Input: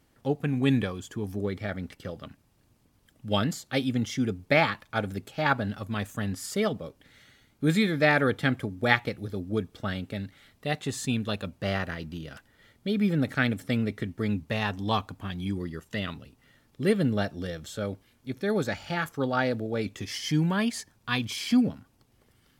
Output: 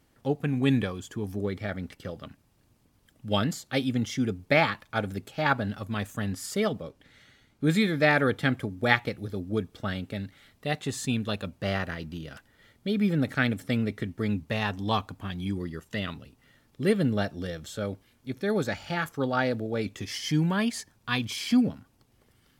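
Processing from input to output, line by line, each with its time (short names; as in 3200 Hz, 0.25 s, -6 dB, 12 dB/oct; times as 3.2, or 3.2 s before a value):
6.82–7.71 high shelf 11000 Hz -10 dB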